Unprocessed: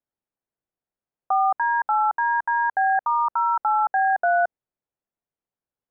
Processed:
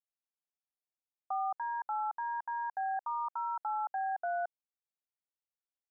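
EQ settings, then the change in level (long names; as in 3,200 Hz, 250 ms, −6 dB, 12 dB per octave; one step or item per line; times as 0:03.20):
high-pass filter 750 Hz 12 dB per octave
low-pass filter 1,100 Hz 12 dB per octave
high-frequency loss of the air 440 metres
−8.0 dB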